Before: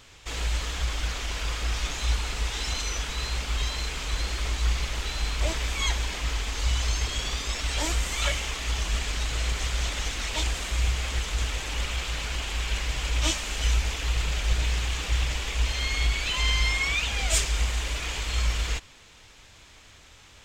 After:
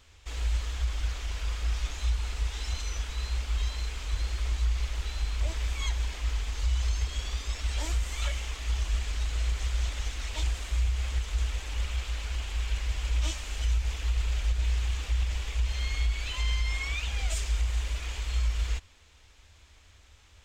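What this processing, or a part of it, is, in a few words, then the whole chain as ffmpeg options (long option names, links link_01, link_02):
car stereo with a boomy subwoofer: -af "lowshelf=frequency=100:width_type=q:width=3:gain=6,alimiter=limit=-11dB:level=0:latency=1:release=117,volume=-8.5dB"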